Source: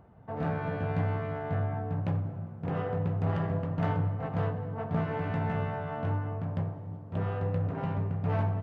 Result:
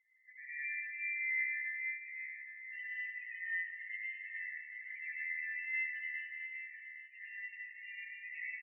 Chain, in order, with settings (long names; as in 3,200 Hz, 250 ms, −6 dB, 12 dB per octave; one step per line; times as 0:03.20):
Chebyshev high-pass filter 1,900 Hz, order 6
high-shelf EQ 2,900 Hz −11.5 dB
brickwall limiter −51 dBFS, peak gain reduction 11 dB
spectral peaks only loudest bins 4
double-tracking delay 17 ms −7 dB
slap from a distant wall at 140 metres, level −6 dB
convolution reverb RT60 1.3 s, pre-delay 92 ms, DRR −5.5 dB
level +16 dB